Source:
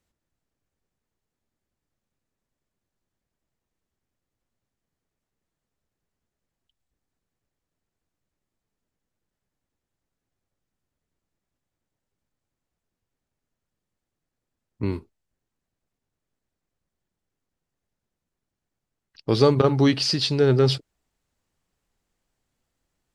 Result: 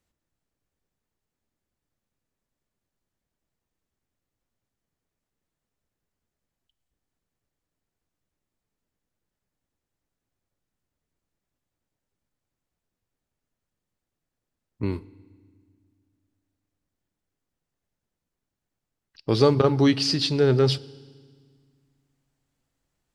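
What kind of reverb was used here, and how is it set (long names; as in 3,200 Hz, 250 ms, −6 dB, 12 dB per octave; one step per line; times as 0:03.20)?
feedback delay network reverb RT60 1.7 s, low-frequency decay 1.6×, high-frequency decay 1×, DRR 19.5 dB
level −1 dB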